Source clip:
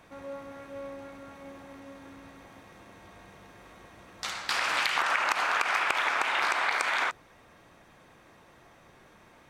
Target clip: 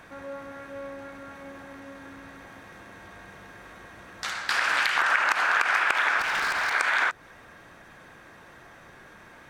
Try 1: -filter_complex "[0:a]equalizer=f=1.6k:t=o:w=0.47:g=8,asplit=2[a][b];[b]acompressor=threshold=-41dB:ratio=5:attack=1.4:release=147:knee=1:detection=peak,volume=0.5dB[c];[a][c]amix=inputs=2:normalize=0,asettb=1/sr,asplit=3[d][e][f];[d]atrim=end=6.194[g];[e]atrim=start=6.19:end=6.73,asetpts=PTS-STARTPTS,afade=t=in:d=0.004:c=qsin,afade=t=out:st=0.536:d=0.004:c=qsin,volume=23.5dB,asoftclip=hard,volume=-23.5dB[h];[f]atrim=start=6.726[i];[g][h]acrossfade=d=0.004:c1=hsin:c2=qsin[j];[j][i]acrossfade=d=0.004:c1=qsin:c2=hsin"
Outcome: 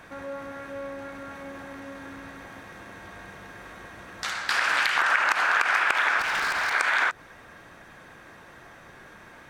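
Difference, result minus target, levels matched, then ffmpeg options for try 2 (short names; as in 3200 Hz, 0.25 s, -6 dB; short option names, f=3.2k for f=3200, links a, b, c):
compressor: peak gain reduction -9 dB
-filter_complex "[0:a]equalizer=f=1.6k:t=o:w=0.47:g=8,asplit=2[a][b];[b]acompressor=threshold=-52dB:ratio=5:attack=1.4:release=147:knee=1:detection=peak,volume=0.5dB[c];[a][c]amix=inputs=2:normalize=0,asettb=1/sr,asplit=3[d][e][f];[d]atrim=end=6.194[g];[e]atrim=start=6.19:end=6.73,asetpts=PTS-STARTPTS,afade=t=in:d=0.004:c=qsin,afade=t=out:st=0.536:d=0.004:c=qsin,volume=23.5dB,asoftclip=hard,volume=-23.5dB[h];[f]atrim=start=6.726[i];[g][h]acrossfade=d=0.004:c1=hsin:c2=qsin[j];[j][i]acrossfade=d=0.004:c1=qsin:c2=hsin"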